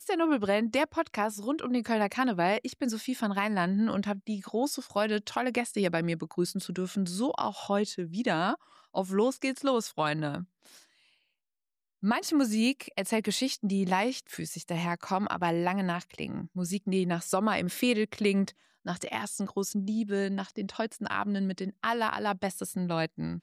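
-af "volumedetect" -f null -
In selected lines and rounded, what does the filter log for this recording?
mean_volume: -30.3 dB
max_volume: -14.6 dB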